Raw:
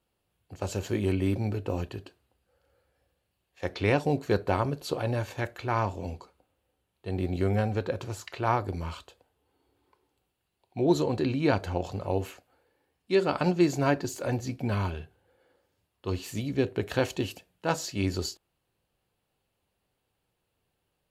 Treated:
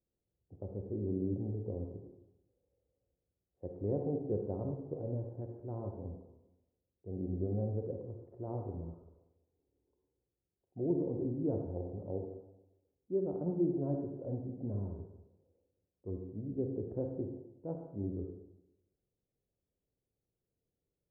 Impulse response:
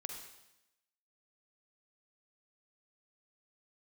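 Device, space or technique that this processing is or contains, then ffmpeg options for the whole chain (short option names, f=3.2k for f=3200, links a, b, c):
next room: -filter_complex "[0:a]lowpass=f=550:w=0.5412,lowpass=f=550:w=1.3066[a];[1:a]atrim=start_sample=2205[b];[a][b]afir=irnorm=-1:irlink=0,volume=-5.5dB"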